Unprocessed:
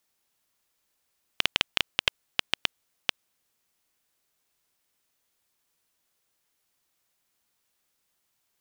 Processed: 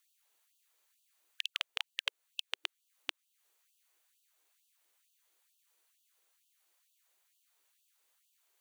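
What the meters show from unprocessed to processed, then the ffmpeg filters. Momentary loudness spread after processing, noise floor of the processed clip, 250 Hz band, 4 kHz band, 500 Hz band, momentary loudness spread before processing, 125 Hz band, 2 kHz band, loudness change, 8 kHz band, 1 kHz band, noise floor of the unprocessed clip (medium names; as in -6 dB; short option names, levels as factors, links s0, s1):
7 LU, -83 dBFS, under -25 dB, -10.0 dB, -14.0 dB, 7 LU, under -40 dB, -10.5 dB, -10.0 dB, -10.0 dB, -12.0 dB, -76 dBFS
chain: -af "bandreject=f=5200:w=9,alimiter=limit=0.211:level=0:latency=1:release=350,afftfilt=real='re*gte(b*sr/1024,280*pow(2700/280,0.5+0.5*sin(2*PI*2.2*pts/sr)))':imag='im*gte(b*sr/1024,280*pow(2700/280,0.5+0.5*sin(2*PI*2.2*pts/sr)))':win_size=1024:overlap=0.75,volume=1.12"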